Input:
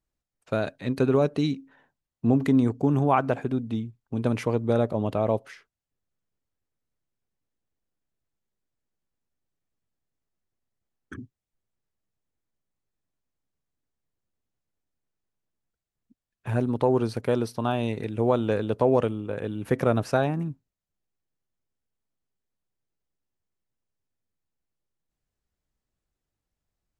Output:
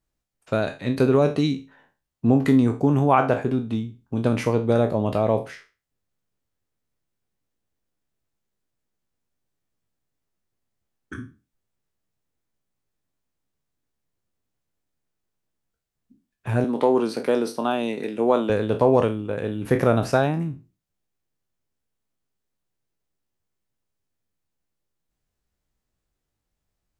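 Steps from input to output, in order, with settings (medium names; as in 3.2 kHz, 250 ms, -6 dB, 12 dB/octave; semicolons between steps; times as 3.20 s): spectral sustain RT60 0.31 s; 16.64–18.50 s: high-pass 200 Hz 24 dB/octave; trim +3 dB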